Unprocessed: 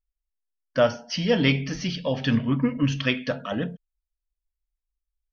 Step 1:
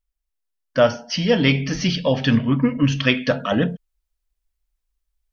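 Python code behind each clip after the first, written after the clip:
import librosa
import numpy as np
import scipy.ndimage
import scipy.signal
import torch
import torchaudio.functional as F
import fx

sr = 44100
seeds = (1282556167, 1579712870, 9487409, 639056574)

y = fx.rider(x, sr, range_db=3, speed_s=0.5)
y = y * 10.0 ** (5.5 / 20.0)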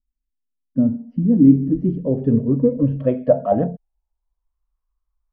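y = fx.low_shelf(x, sr, hz=220.0, db=6.0)
y = fx.filter_sweep_lowpass(y, sr, from_hz=250.0, to_hz=1100.0, start_s=1.14, end_s=4.64, q=5.4)
y = y * 10.0 ** (-5.5 / 20.0)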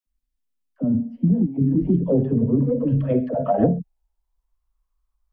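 y = fx.over_compress(x, sr, threshold_db=-17.0, ratio=-0.5)
y = fx.dispersion(y, sr, late='lows', ms=70.0, hz=460.0)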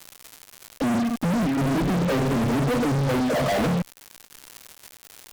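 y = fx.dmg_crackle(x, sr, seeds[0], per_s=490.0, level_db=-39.0)
y = fx.fuzz(y, sr, gain_db=40.0, gate_db=-40.0)
y = y * 10.0 ** (-8.0 / 20.0)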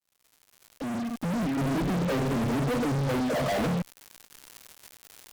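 y = fx.fade_in_head(x, sr, length_s=1.58)
y = y * 10.0 ** (-4.5 / 20.0)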